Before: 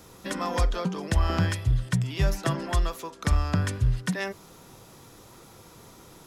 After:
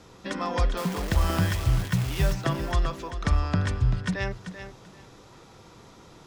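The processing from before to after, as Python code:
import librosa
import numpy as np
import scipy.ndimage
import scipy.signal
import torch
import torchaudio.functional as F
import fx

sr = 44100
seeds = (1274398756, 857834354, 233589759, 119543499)

y = scipy.signal.sosfilt(scipy.signal.butter(2, 5700.0, 'lowpass', fs=sr, output='sos'), x)
y = fx.quant_dither(y, sr, seeds[0], bits=6, dither='none', at=(0.77, 2.33))
y = fx.echo_feedback(y, sr, ms=388, feedback_pct=20, wet_db=-10.5)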